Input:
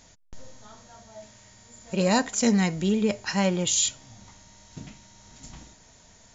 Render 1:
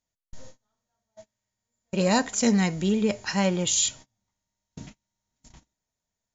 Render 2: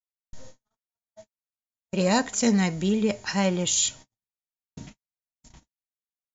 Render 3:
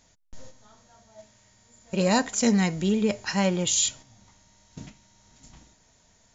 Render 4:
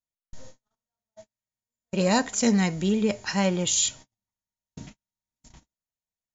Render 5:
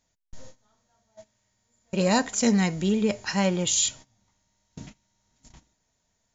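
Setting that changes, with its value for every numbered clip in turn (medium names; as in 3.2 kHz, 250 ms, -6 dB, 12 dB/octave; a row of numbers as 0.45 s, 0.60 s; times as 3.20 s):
gate, range: -32 dB, -60 dB, -7 dB, -45 dB, -20 dB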